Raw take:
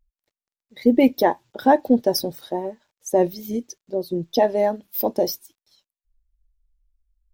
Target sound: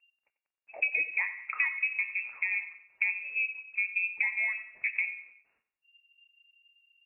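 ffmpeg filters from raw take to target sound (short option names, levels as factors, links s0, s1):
-af "bandreject=f=119.5:t=h:w=4,bandreject=f=239:t=h:w=4,bandreject=f=358.5:t=h:w=4,bandreject=f=478:t=h:w=4,bandreject=f=597.5:t=h:w=4,bandreject=f=717:t=h:w=4,bandreject=f=836.5:t=h:w=4,bandreject=f=956:t=h:w=4,bandreject=f=1075.5:t=h:w=4,bandreject=f=1195:t=h:w=4,bandreject=f=1314.5:t=h:w=4,bandreject=f=1434:t=h:w=4,bandreject=f=1553.5:t=h:w=4,bandreject=f=1673:t=h:w=4,acompressor=threshold=0.0501:ratio=12,aecho=1:1:96|192|288|384:0.188|0.0848|0.0381|0.0172,lowpass=f=2300:t=q:w=0.5098,lowpass=f=2300:t=q:w=0.6013,lowpass=f=2300:t=q:w=0.9,lowpass=f=2300:t=q:w=2.563,afreqshift=-2700,asetrate=45864,aresample=44100"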